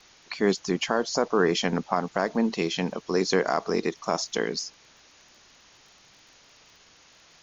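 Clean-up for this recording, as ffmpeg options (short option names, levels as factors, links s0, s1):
-af "adeclick=t=4,afwtdn=0.0028"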